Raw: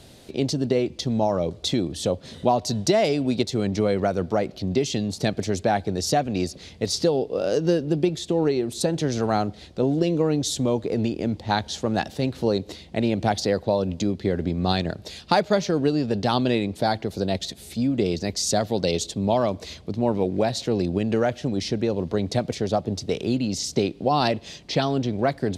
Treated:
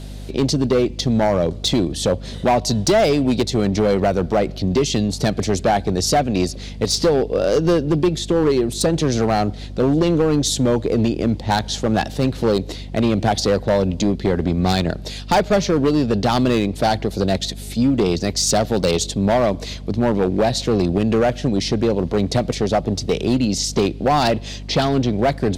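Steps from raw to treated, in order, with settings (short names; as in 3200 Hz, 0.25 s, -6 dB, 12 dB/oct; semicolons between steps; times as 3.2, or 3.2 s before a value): overloaded stage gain 17.5 dB; hum 50 Hz, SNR 14 dB; gain +6.5 dB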